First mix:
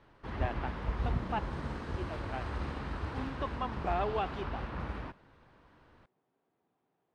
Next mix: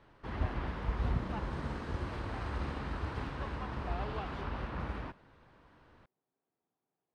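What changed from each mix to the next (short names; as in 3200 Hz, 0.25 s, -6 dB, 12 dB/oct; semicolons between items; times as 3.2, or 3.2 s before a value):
speech -10.0 dB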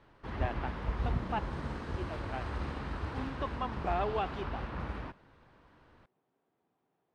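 speech +10.0 dB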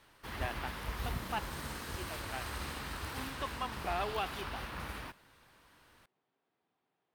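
background: remove air absorption 110 m; master: add tilt shelf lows -6.5 dB, about 1400 Hz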